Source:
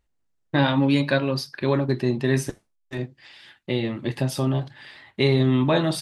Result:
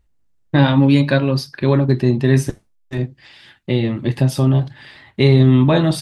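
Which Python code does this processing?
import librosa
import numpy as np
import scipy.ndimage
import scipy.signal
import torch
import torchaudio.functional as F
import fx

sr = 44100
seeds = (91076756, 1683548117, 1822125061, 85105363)

y = fx.low_shelf(x, sr, hz=220.0, db=9.5)
y = y * 10.0 ** (3.0 / 20.0)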